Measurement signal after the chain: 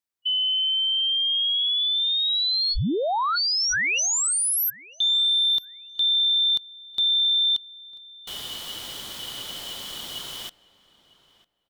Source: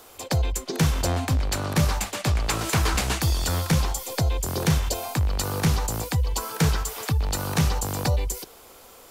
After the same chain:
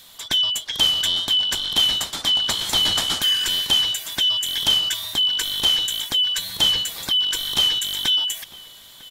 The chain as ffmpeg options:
-filter_complex "[0:a]afftfilt=real='real(if(lt(b,272),68*(eq(floor(b/68),0)*1+eq(floor(b/68),1)*3+eq(floor(b/68),2)*0+eq(floor(b/68),3)*2)+mod(b,68),b),0)':imag='imag(if(lt(b,272),68*(eq(floor(b/68),0)*1+eq(floor(b/68),1)*3+eq(floor(b/68),2)*0+eq(floor(b/68),3)*2)+mod(b,68),b),0)':win_size=2048:overlap=0.75,adynamicequalizer=threshold=0.00316:dfrequency=480:dqfactor=2.2:tfrequency=480:tqfactor=2.2:attack=5:release=100:ratio=0.375:range=1.5:mode=cutabove:tftype=bell,asplit=2[s0][s1];[s1]adelay=951,lowpass=f=2700:p=1,volume=0.0944,asplit=2[s2][s3];[s3]adelay=951,lowpass=f=2700:p=1,volume=0.17[s4];[s0][s2][s4]amix=inputs=3:normalize=0,volume=1.26"

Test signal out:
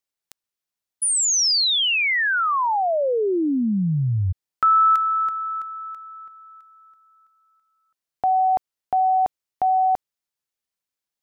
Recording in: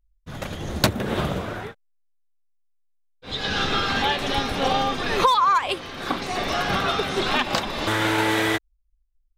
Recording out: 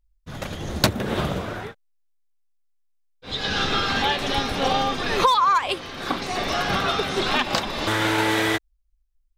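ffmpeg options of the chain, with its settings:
-af "equalizer=f=5100:w=1.5:g=2"

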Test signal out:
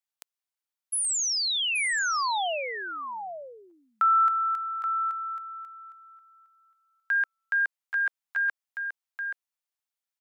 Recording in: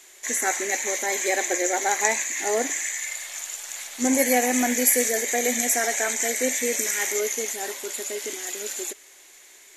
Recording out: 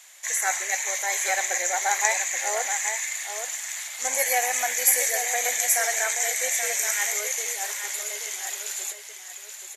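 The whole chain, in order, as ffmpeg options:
-filter_complex "[0:a]highpass=f=640:w=0.5412,highpass=f=640:w=1.3066,asplit=2[s0][s1];[s1]aecho=0:1:828:0.398[s2];[s0][s2]amix=inputs=2:normalize=0"

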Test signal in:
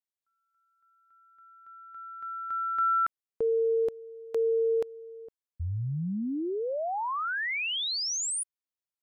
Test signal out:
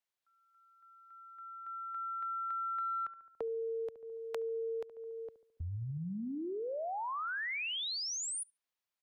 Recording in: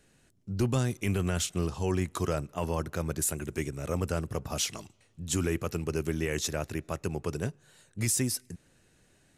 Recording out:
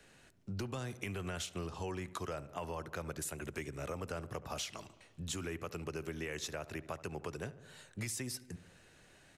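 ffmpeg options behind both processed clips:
-filter_complex "[0:a]acrossover=split=130|490|4800[s0][s1][s2][s3];[s2]acontrast=82[s4];[s0][s1][s4][s3]amix=inputs=4:normalize=0,asplit=2[s5][s6];[s6]adelay=71,lowpass=f=1600:p=1,volume=0.15,asplit=2[s7][s8];[s8]adelay=71,lowpass=f=1600:p=1,volume=0.53,asplit=2[s9][s10];[s10]adelay=71,lowpass=f=1600:p=1,volume=0.53,asplit=2[s11][s12];[s12]adelay=71,lowpass=f=1600:p=1,volume=0.53,asplit=2[s13][s14];[s14]adelay=71,lowpass=f=1600:p=1,volume=0.53[s15];[s5][s7][s9][s11][s13][s15]amix=inputs=6:normalize=0,acompressor=threshold=0.0158:ratio=6:attack=9.7:release=288:knee=6:detection=rms,volume=0.891"

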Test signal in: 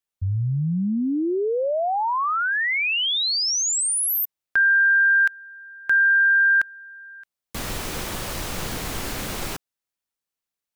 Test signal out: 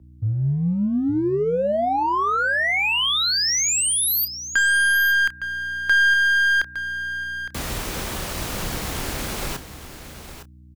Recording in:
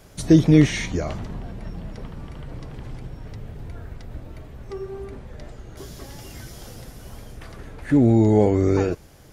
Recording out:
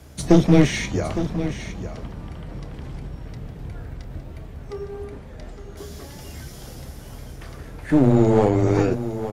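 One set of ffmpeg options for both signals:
-filter_complex "[0:a]asplit=2[s0][s1];[s1]aeval=exprs='sgn(val(0))*max(abs(val(0))-0.0335,0)':c=same,volume=0.282[s2];[s0][s2]amix=inputs=2:normalize=0,aeval=exprs='val(0)+0.00501*(sin(2*PI*60*n/s)+sin(2*PI*2*60*n/s)/2+sin(2*PI*3*60*n/s)/3+sin(2*PI*4*60*n/s)/4+sin(2*PI*5*60*n/s)/5)':c=same,afreqshift=14,aeval=exprs='clip(val(0),-1,0.15)':c=same,asplit=2[s3][s4];[s4]adelay=29,volume=0.2[s5];[s3][s5]amix=inputs=2:normalize=0,asplit=2[s6][s7];[s7]aecho=0:1:861:0.266[s8];[s6][s8]amix=inputs=2:normalize=0"

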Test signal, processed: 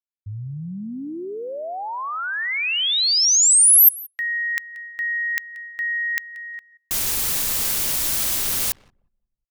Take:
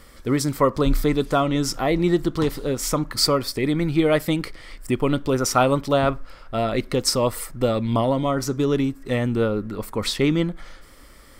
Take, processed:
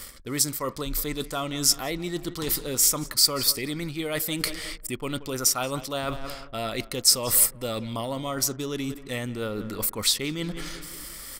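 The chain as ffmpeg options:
-filter_complex "[0:a]asplit=2[s0][s1];[s1]adelay=181,lowpass=f=4400:p=1,volume=0.112,asplit=2[s2][s3];[s3]adelay=181,lowpass=f=4400:p=1,volume=0.51,asplit=2[s4][s5];[s5]adelay=181,lowpass=f=4400:p=1,volume=0.51,asplit=2[s6][s7];[s7]adelay=181,lowpass=f=4400:p=1,volume=0.51[s8];[s0][s2][s4][s6][s8]amix=inputs=5:normalize=0,areverse,acompressor=threshold=0.0316:ratio=5,areverse,anlmdn=0.00158,crystalizer=i=6:c=0"

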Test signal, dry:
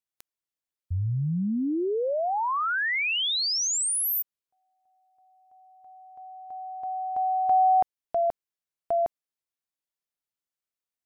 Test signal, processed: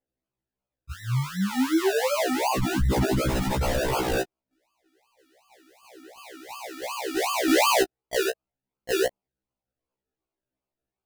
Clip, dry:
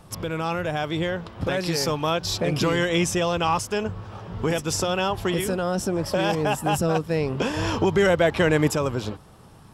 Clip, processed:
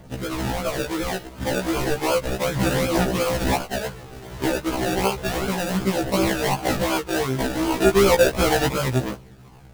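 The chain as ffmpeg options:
-af "acrusher=samples=33:mix=1:aa=0.000001:lfo=1:lforange=19.8:lforate=2.7,aphaser=in_gain=1:out_gain=1:delay=3.5:decay=0.34:speed=0.33:type=triangular,afftfilt=real='re*1.73*eq(mod(b,3),0)':imag='im*1.73*eq(mod(b,3),0)':win_size=2048:overlap=0.75,volume=1.5"

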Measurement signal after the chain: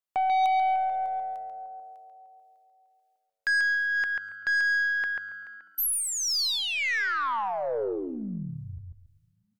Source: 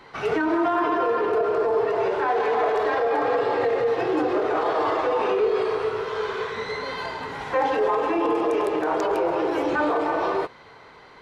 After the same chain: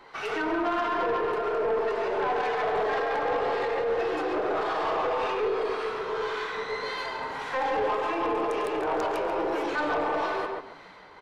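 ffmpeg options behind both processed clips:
-filter_complex "[0:a]equalizer=f=110:w=0.38:g=-11,acrossover=split=1200[s0][s1];[s0]aeval=exprs='val(0)*(1-0.5/2+0.5/2*cos(2*PI*1.8*n/s))':c=same[s2];[s1]aeval=exprs='val(0)*(1-0.5/2-0.5/2*cos(2*PI*1.8*n/s))':c=same[s3];[s2][s3]amix=inputs=2:normalize=0,asplit=2[s4][s5];[s5]adelay=139,lowpass=f=2500:p=1,volume=0.708,asplit=2[s6][s7];[s7]adelay=139,lowpass=f=2500:p=1,volume=0.22,asplit=2[s8][s9];[s9]adelay=139,lowpass=f=2500:p=1,volume=0.22[s10];[s6][s8][s10]amix=inputs=3:normalize=0[s11];[s4][s11]amix=inputs=2:normalize=0,aeval=exprs='0.211*(cos(1*acos(clip(val(0)/0.211,-1,1)))-cos(1*PI/2))+0.00168*(cos(2*acos(clip(val(0)/0.211,-1,1)))-cos(2*PI/2))+0.00335*(cos(4*acos(clip(val(0)/0.211,-1,1)))-cos(4*PI/2))+0.0299*(cos(5*acos(clip(val(0)/0.211,-1,1)))-cos(5*PI/2))+0.00422*(cos(8*acos(clip(val(0)/0.211,-1,1)))-cos(8*PI/2))':c=same,asplit=2[s12][s13];[s13]asplit=3[s14][s15][s16];[s14]adelay=248,afreqshift=-100,volume=0.075[s17];[s15]adelay=496,afreqshift=-200,volume=0.0347[s18];[s16]adelay=744,afreqshift=-300,volume=0.0158[s19];[s17][s18][s19]amix=inputs=3:normalize=0[s20];[s12][s20]amix=inputs=2:normalize=0,volume=0.631"

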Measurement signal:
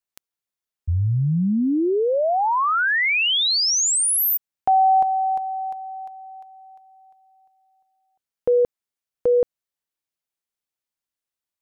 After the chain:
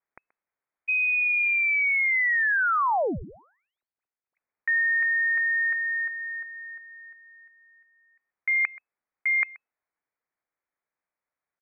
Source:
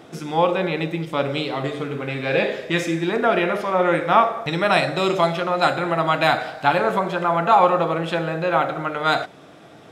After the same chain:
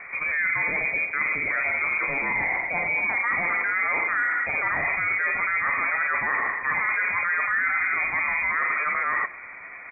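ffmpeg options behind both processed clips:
-af "lowshelf=f=180:g=-11,areverse,acompressor=threshold=0.0355:ratio=10:attack=3.6:release=47:knee=1:detection=peak,areverse,aecho=1:1:129:0.0841,lowpass=f=2200:t=q:w=0.5098,lowpass=f=2200:t=q:w=0.6013,lowpass=f=2200:t=q:w=0.9,lowpass=f=2200:t=q:w=2.563,afreqshift=-2600,volume=2.24"

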